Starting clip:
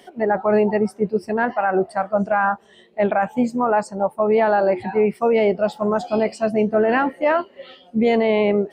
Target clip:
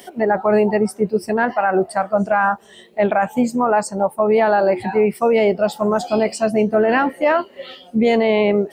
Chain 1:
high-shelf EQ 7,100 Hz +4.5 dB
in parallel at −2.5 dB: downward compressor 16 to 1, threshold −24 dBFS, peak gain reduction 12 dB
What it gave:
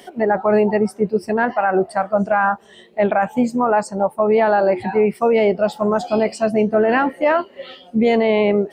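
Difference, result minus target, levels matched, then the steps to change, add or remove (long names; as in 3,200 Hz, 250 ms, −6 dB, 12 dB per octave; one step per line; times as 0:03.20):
8,000 Hz band −5.5 dB
change: high-shelf EQ 7,100 Hz +14.5 dB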